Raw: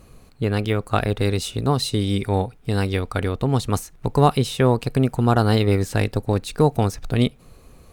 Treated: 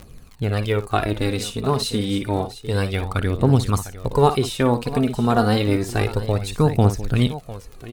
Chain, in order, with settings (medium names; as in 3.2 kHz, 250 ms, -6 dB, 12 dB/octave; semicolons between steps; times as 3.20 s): multi-tap echo 57/703 ms -11.5/-14 dB; crackle 52 per s -31 dBFS; phaser 0.29 Hz, delay 4.9 ms, feedback 48%; trim -1 dB